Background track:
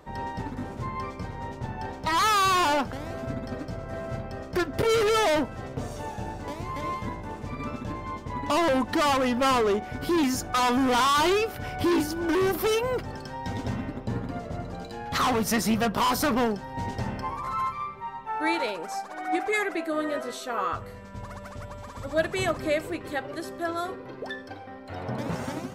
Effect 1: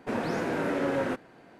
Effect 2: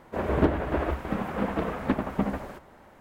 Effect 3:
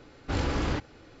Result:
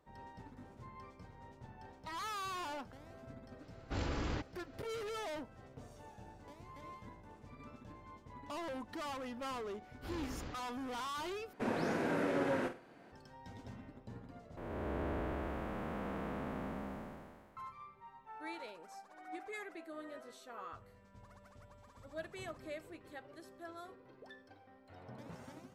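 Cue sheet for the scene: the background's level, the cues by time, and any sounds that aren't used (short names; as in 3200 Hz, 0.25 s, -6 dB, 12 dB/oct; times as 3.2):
background track -19.5 dB
3.62 add 3 -9.5 dB
9.75 add 3 -17 dB
11.53 replace with 1 -6 dB + flutter echo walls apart 8.3 m, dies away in 0.3 s
14.57 replace with 2 -9 dB + time blur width 0.586 s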